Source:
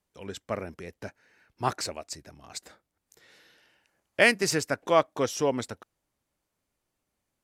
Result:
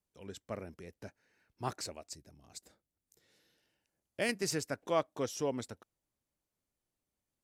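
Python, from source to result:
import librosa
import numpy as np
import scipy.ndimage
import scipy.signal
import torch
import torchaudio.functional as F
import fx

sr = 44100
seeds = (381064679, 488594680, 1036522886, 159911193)

y = fx.peak_eq(x, sr, hz=1500.0, db=fx.steps((0.0, -5.0), (2.14, -11.0), (4.29, -4.5)), octaves=2.9)
y = y * 10.0 ** (-6.5 / 20.0)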